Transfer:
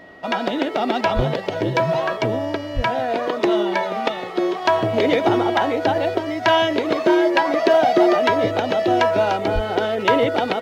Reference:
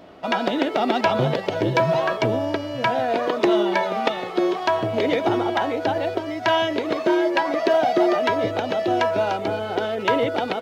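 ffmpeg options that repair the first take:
-filter_complex "[0:a]bandreject=f=1900:w=30,asplit=3[s0][s1][s2];[s0]afade=t=out:st=1.15:d=0.02[s3];[s1]highpass=f=140:w=0.5412,highpass=f=140:w=1.3066,afade=t=in:st=1.15:d=0.02,afade=t=out:st=1.27:d=0.02[s4];[s2]afade=t=in:st=1.27:d=0.02[s5];[s3][s4][s5]amix=inputs=3:normalize=0,asplit=3[s6][s7][s8];[s6]afade=t=out:st=2.75:d=0.02[s9];[s7]highpass=f=140:w=0.5412,highpass=f=140:w=1.3066,afade=t=in:st=2.75:d=0.02,afade=t=out:st=2.87:d=0.02[s10];[s8]afade=t=in:st=2.87:d=0.02[s11];[s9][s10][s11]amix=inputs=3:normalize=0,asplit=3[s12][s13][s14];[s12]afade=t=out:st=9.54:d=0.02[s15];[s13]highpass=f=140:w=0.5412,highpass=f=140:w=1.3066,afade=t=in:st=9.54:d=0.02,afade=t=out:st=9.66:d=0.02[s16];[s14]afade=t=in:st=9.66:d=0.02[s17];[s15][s16][s17]amix=inputs=3:normalize=0,asetnsamples=n=441:p=0,asendcmd='4.65 volume volume -3.5dB',volume=1"

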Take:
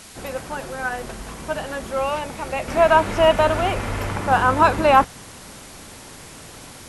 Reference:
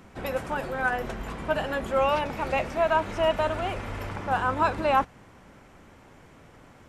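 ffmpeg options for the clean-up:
-af "afwtdn=0.0089,asetnsamples=n=441:p=0,asendcmd='2.68 volume volume -8.5dB',volume=1"

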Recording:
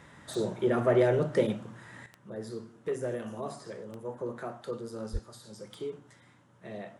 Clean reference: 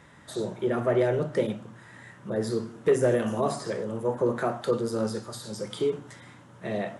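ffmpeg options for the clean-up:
-filter_complex "[0:a]adeclick=t=4,asplit=3[s0][s1][s2];[s0]afade=t=out:st=5.12:d=0.02[s3];[s1]highpass=f=140:w=0.5412,highpass=f=140:w=1.3066,afade=t=in:st=5.12:d=0.02,afade=t=out:st=5.24:d=0.02[s4];[s2]afade=t=in:st=5.24:d=0.02[s5];[s3][s4][s5]amix=inputs=3:normalize=0,asetnsamples=n=441:p=0,asendcmd='2.06 volume volume 11dB',volume=1"

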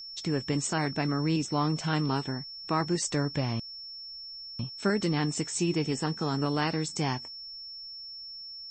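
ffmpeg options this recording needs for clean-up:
-af "bandreject=f=5400:w=30,agate=range=0.0891:threshold=0.0178"

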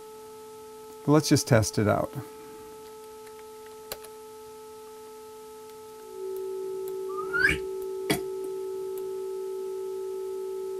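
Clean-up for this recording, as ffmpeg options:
-af "adeclick=t=4,bandreject=f=434.3:t=h:w=4,bandreject=f=868.6:t=h:w=4,bandreject=f=1302.9:t=h:w=4,bandreject=f=380:w=30,afwtdn=0.002"

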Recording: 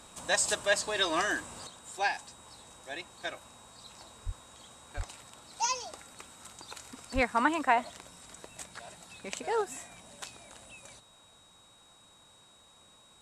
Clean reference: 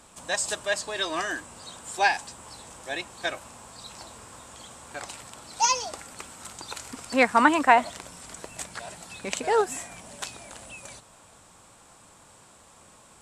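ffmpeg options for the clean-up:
-filter_complex "[0:a]bandreject=f=3800:w=30,asplit=3[s0][s1][s2];[s0]afade=t=out:st=4.25:d=0.02[s3];[s1]highpass=f=140:w=0.5412,highpass=f=140:w=1.3066,afade=t=in:st=4.25:d=0.02,afade=t=out:st=4.37:d=0.02[s4];[s2]afade=t=in:st=4.37:d=0.02[s5];[s3][s4][s5]amix=inputs=3:normalize=0,asplit=3[s6][s7][s8];[s6]afade=t=out:st=4.96:d=0.02[s9];[s7]highpass=f=140:w=0.5412,highpass=f=140:w=1.3066,afade=t=in:st=4.96:d=0.02,afade=t=out:st=5.08:d=0.02[s10];[s8]afade=t=in:st=5.08:d=0.02[s11];[s9][s10][s11]amix=inputs=3:normalize=0,asplit=3[s12][s13][s14];[s12]afade=t=out:st=7.14:d=0.02[s15];[s13]highpass=f=140:w=0.5412,highpass=f=140:w=1.3066,afade=t=in:st=7.14:d=0.02,afade=t=out:st=7.26:d=0.02[s16];[s14]afade=t=in:st=7.26:d=0.02[s17];[s15][s16][s17]amix=inputs=3:normalize=0,asetnsamples=n=441:p=0,asendcmd='1.67 volume volume 8dB',volume=1"

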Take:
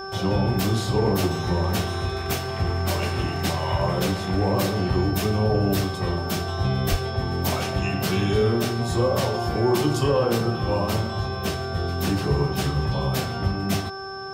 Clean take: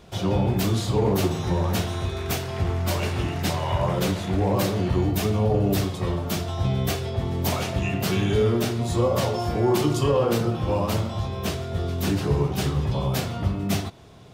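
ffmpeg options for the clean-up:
-filter_complex "[0:a]bandreject=f=387.7:t=h:w=4,bandreject=f=775.4:t=h:w=4,bandreject=f=1163.1:t=h:w=4,bandreject=f=1550.8:t=h:w=4,bandreject=f=5300:w=30,asplit=3[s0][s1][s2];[s0]afade=t=out:st=6.9:d=0.02[s3];[s1]highpass=f=140:w=0.5412,highpass=f=140:w=1.3066,afade=t=in:st=6.9:d=0.02,afade=t=out:st=7.02:d=0.02[s4];[s2]afade=t=in:st=7.02:d=0.02[s5];[s3][s4][s5]amix=inputs=3:normalize=0"

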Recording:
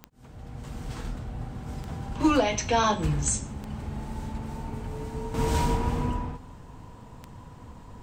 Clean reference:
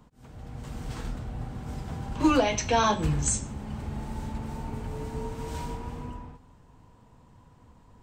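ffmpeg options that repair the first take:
-af "adeclick=t=4,asetnsamples=n=441:p=0,asendcmd='5.34 volume volume -10dB',volume=1"

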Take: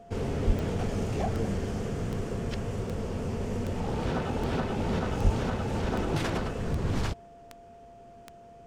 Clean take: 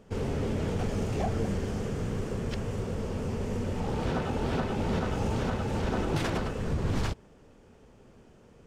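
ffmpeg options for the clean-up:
-filter_complex "[0:a]adeclick=t=4,bandreject=f=690:w=30,asplit=3[s0][s1][s2];[s0]afade=t=out:st=0.46:d=0.02[s3];[s1]highpass=f=140:w=0.5412,highpass=f=140:w=1.3066,afade=t=in:st=0.46:d=0.02,afade=t=out:st=0.58:d=0.02[s4];[s2]afade=t=in:st=0.58:d=0.02[s5];[s3][s4][s5]amix=inputs=3:normalize=0,asplit=3[s6][s7][s8];[s6]afade=t=out:st=5.23:d=0.02[s9];[s7]highpass=f=140:w=0.5412,highpass=f=140:w=1.3066,afade=t=in:st=5.23:d=0.02,afade=t=out:st=5.35:d=0.02[s10];[s8]afade=t=in:st=5.35:d=0.02[s11];[s9][s10][s11]amix=inputs=3:normalize=0"

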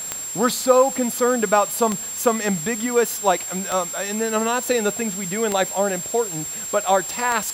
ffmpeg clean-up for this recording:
-af "adeclick=t=4,bandreject=f=7500:w=30,afwtdn=0.013"

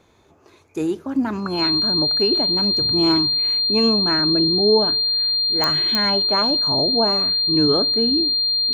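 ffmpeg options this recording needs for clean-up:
-af "adeclick=t=4,bandreject=f=4200:w=30"

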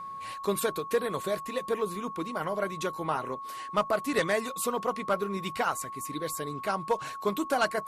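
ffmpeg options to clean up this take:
-af "bandreject=f=1100:w=30"

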